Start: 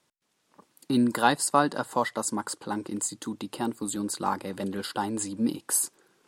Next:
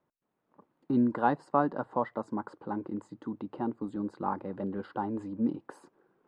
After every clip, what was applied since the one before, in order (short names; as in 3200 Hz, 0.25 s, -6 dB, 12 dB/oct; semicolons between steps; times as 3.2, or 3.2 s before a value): LPF 1100 Hz 12 dB/oct; gain -2.5 dB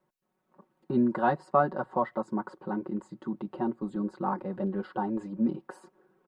comb 5.4 ms, depth 87%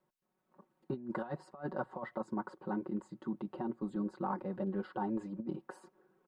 negative-ratio compressor -29 dBFS, ratio -0.5; gain -6.5 dB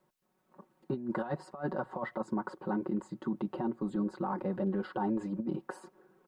limiter -30.5 dBFS, peak gain reduction 6.5 dB; gain +6.5 dB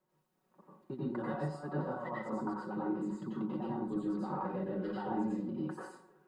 plate-style reverb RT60 0.5 s, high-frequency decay 0.75×, pre-delay 80 ms, DRR -6 dB; gain -8.5 dB